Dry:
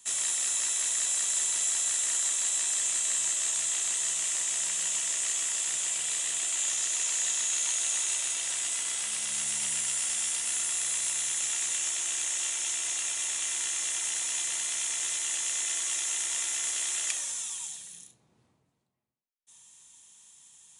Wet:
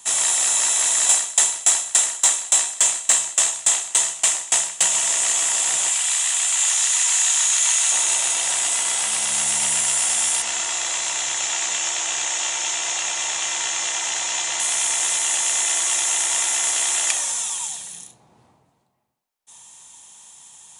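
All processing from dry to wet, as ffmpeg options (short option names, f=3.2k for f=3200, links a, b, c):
-filter_complex "[0:a]asettb=1/sr,asplit=3[a][b][c];[a]atrim=end=1.094[d];[b]atrim=start=1.09:end=4.88,asetpts=PTS-STARTPTS,afade=t=in:d=0.004:c=qsin,afade=t=out:st=3.786:d=0.004:c=qsin,acontrast=78,aeval=exprs='val(0)*pow(10,-26*if(lt(mod(3.5*n/s,1),2*abs(3.5)/1000),1-mod(3.5*n/s,1)/(2*abs(3.5)/1000),(mod(3.5*n/s,1)-2*abs(3.5)/1000)/(1-2*abs(3.5)/1000))/20)':c=same[e];[c]atrim=start=4.876[f];[d][e]acrossfade=d=0.004:c1=hsin:c2=qsin[g];[g][f]acrossfade=d=0.004:c1=qsin:c2=hsin,asettb=1/sr,asplit=3[h][i][j];[h]atrim=end=5.894[k];[i]atrim=start=5.89:end=7.92,asetpts=PTS-STARTPTS,afade=t=in:d=0.004:c=qsin,afade=t=out:st=2.026:d=0.004:c=qsin,highpass=1k,aecho=1:1:718:0.473,atrim=end_sample=89523[l];[j]atrim=start=7.916[m];[k][l]acrossfade=d=0.004:c1=hsin:c2=qsin[n];[n][m]acrossfade=d=0.004:c1=qsin:c2=hsin,asettb=1/sr,asplit=3[o][p][q];[o]atrim=end=10.424[r];[p]atrim=start=10.42:end=14.6,asetpts=PTS-STARTPTS,afade=t=in:d=0.004:c=qsin,afade=t=out:st=4.176:d=0.004:c=qsin,lowpass=f=7k:w=0.5412,lowpass=f=7k:w=1.3066,bandreject=f=50:t=h:w=6,bandreject=f=100:t=h:w=6,bandreject=f=150:t=h:w=6,bandreject=f=200:t=h:w=6,bandreject=f=250:t=h:w=6,bandreject=f=300:t=h:w=6,bandreject=f=350:t=h:w=6[s];[q]atrim=start=14.596[t];[r][s]acrossfade=d=0.004:c1=hsin:c2=qsin[u];[u][t]acrossfade=d=0.004:c1=qsin:c2=hsin,equalizer=f=820:w=1.5:g=9.5,acontrast=90,volume=2.5dB"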